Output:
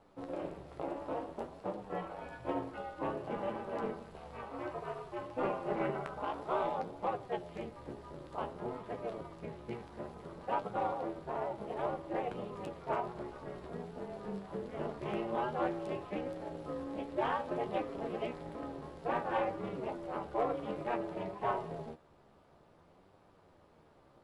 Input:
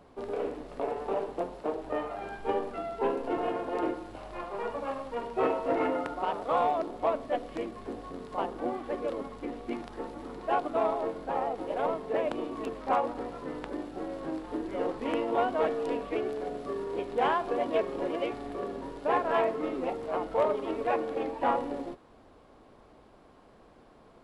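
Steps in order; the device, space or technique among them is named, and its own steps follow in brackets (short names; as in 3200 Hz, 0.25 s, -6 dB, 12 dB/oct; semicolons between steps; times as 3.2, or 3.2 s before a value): alien voice (ring modulator 120 Hz; flange 0.56 Hz, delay 9.6 ms, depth 5.2 ms, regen +42%)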